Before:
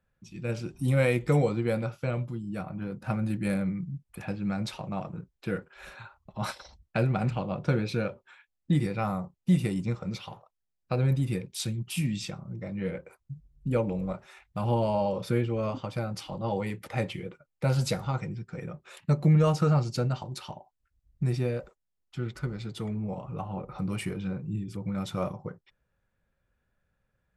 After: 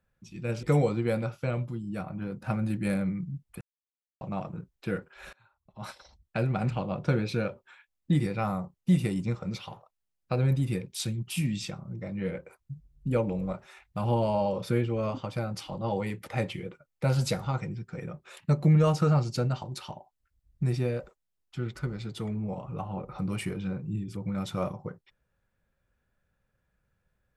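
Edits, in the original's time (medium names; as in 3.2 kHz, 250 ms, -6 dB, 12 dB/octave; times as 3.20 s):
0.63–1.23 s: delete
4.21–4.81 s: mute
5.93–7.37 s: fade in, from -24 dB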